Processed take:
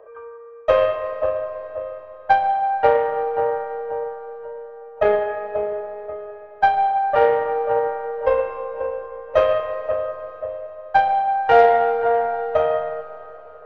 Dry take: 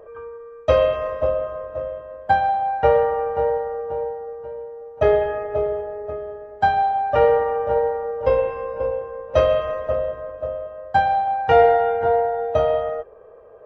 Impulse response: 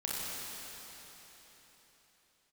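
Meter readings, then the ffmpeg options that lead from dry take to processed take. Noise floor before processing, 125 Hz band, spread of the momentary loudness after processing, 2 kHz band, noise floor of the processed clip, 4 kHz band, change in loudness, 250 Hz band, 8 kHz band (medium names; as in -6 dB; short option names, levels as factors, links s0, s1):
-43 dBFS, -10.5 dB, 17 LU, +2.0 dB, -41 dBFS, -1.0 dB, +0.5 dB, -3.5 dB, no reading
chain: -filter_complex "[0:a]acrossover=split=400 3000:gain=0.178 1 0.224[s0][s1][s2];[s0][s1][s2]amix=inputs=3:normalize=0,aeval=exprs='0.562*(cos(1*acos(clip(val(0)/0.562,-1,1)))-cos(1*PI/2))+0.0355*(cos(3*acos(clip(val(0)/0.562,-1,1)))-cos(3*PI/2))+0.00891*(cos(7*acos(clip(val(0)/0.562,-1,1)))-cos(7*PI/2))+0.00708*(cos(8*acos(clip(val(0)/0.562,-1,1)))-cos(8*PI/2))':c=same,asplit=2[s3][s4];[1:a]atrim=start_sample=2205[s5];[s4][s5]afir=irnorm=-1:irlink=0,volume=0.158[s6];[s3][s6]amix=inputs=2:normalize=0,volume=1.33"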